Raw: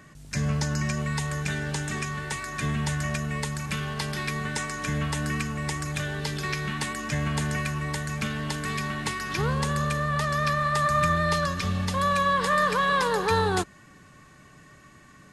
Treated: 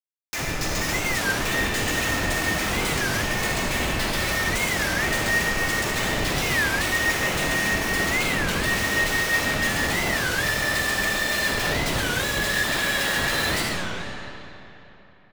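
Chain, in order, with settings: Chebyshev high-pass 1800 Hz, order 5; high shelf 3300 Hz +4.5 dB; comb 6.4 ms, depth 41%; 1.89–4.51 frequency shift -28 Hz; Schmitt trigger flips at -35 dBFS; reverb RT60 3.3 s, pre-delay 15 ms, DRR -3.5 dB; record warp 33 1/3 rpm, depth 250 cents; gain +6 dB

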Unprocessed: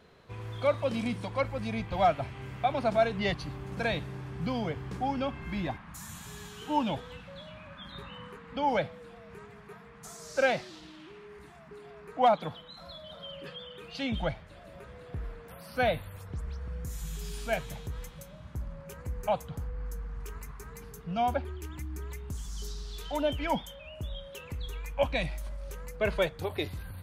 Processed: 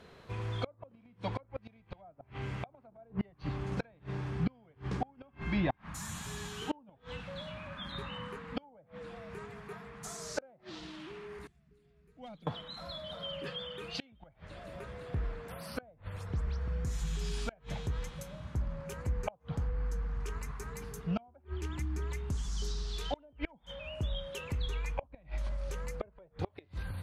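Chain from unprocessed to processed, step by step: 11.47–12.47 passive tone stack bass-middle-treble 10-0-1; treble ducked by the level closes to 780 Hz, closed at -23.5 dBFS; flipped gate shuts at -24 dBFS, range -32 dB; gain +3 dB

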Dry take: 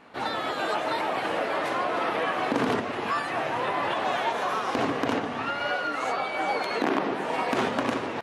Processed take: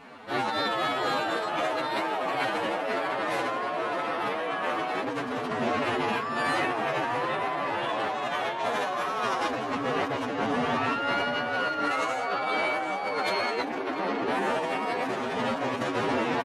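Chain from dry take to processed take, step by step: time stretch by phase-locked vocoder 2×; negative-ratio compressor -32 dBFS, ratio -1; outdoor echo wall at 120 m, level -7 dB; gain +2.5 dB

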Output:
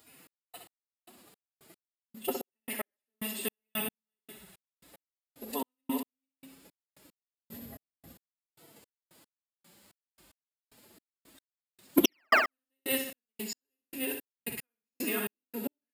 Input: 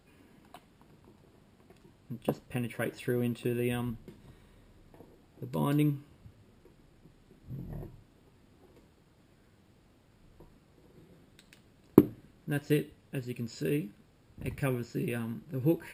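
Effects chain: reverse delay 0.262 s, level -4 dB; painted sound fall, 12.05–12.28, 590–3400 Hz -12 dBFS; formant-preserving pitch shift +10 st; RIAA curve recording; flutter echo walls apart 10.9 m, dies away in 0.61 s; step gate "xx..x..." 112 bpm -60 dB; gain +2 dB

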